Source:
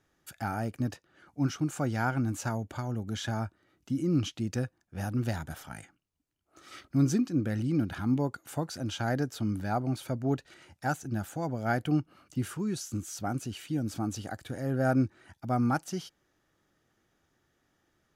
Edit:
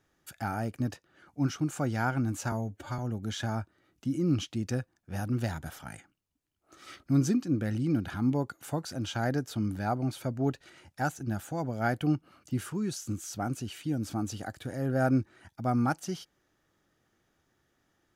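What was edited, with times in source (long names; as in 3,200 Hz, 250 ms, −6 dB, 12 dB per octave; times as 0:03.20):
0:02.52–0:02.83: time-stretch 1.5×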